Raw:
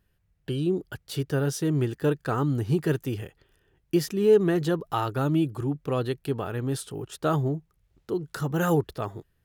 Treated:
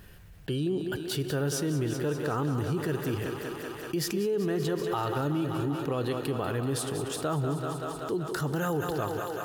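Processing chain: low shelf 180 Hz -3 dB; thinning echo 0.191 s, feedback 76%, high-pass 250 Hz, level -9.5 dB; on a send at -17.5 dB: reverb RT60 2.6 s, pre-delay 28 ms; on the sum: limiter -20 dBFS, peak gain reduction 9.5 dB; fast leveller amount 50%; gain -2.5 dB

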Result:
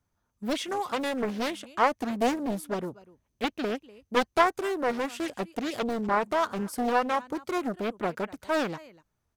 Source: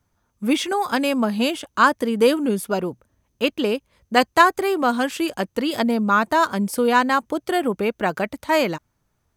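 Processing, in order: echo 0.246 s -21.5 dB; Doppler distortion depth 0.73 ms; gain -8.5 dB

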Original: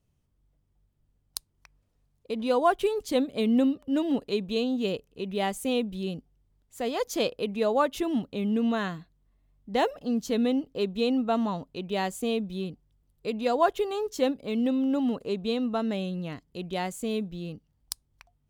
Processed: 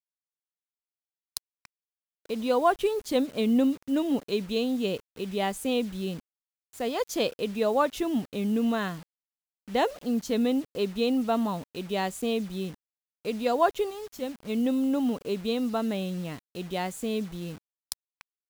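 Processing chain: spectral gain 13.9–14.49, 240–11000 Hz -9 dB; bit-crush 8-bit

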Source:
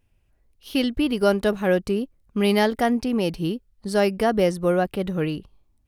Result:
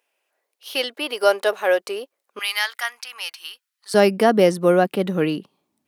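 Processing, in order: HPF 490 Hz 24 dB/oct, from 2.39 s 1200 Hz, from 3.94 s 180 Hz; gain +5 dB

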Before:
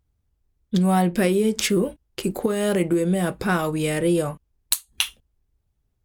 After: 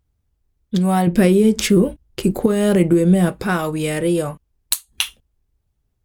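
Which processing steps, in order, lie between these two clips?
1.07–3.29 low shelf 290 Hz +9.5 dB; gain +2 dB

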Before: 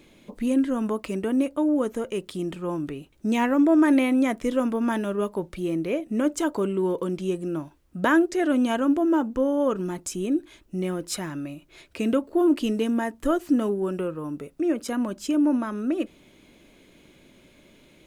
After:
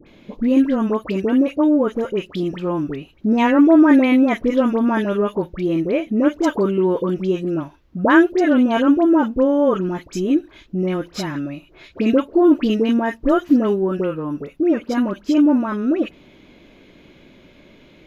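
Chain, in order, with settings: running mean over 5 samples; dispersion highs, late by 68 ms, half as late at 1400 Hz; gain +7 dB

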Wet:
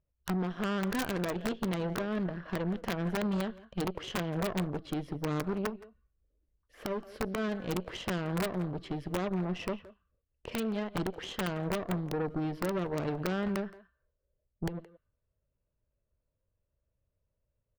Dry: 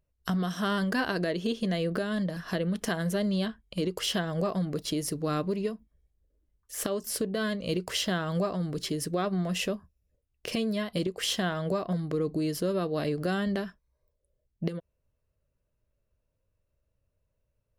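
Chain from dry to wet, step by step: air absorption 360 m; on a send at -11.5 dB: rippled Chebyshev high-pass 1100 Hz, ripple 6 dB + reverb RT60 0.40 s, pre-delay 0.116 s; on the sum: wrapped overs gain 21.5 dB; speakerphone echo 0.17 s, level -13 dB; added harmonics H 2 -8 dB, 4 -8 dB, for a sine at -20.5 dBFS; bell 5400 Hz -2.5 dB 1.4 oct; gain -3.5 dB

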